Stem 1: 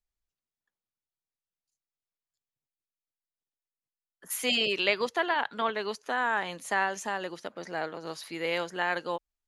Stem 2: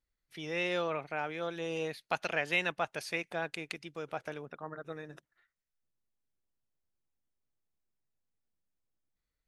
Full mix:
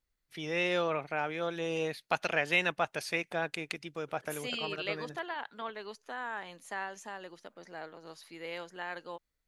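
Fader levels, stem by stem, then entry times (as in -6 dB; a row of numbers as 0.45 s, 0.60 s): -10.5 dB, +2.5 dB; 0.00 s, 0.00 s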